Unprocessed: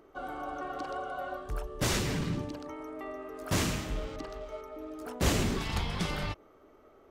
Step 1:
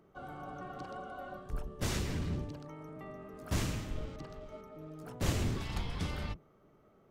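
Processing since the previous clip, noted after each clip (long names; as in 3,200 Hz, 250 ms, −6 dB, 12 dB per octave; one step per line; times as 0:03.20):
sub-octave generator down 1 octave, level +4 dB
level −7.5 dB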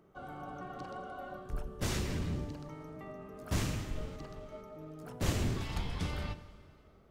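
dense smooth reverb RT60 2.4 s, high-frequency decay 0.85×, DRR 12.5 dB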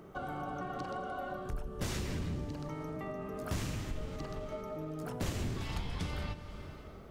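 downward compressor 3 to 1, threshold −50 dBFS, peak gain reduction 17.5 dB
level +11.5 dB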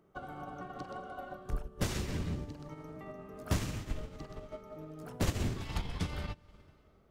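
expander for the loud parts 2.5 to 1, over −46 dBFS
level +6.5 dB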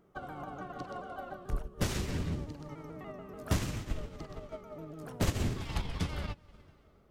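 pitch modulation by a square or saw wave saw down 6.9 Hz, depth 100 cents
level +1.5 dB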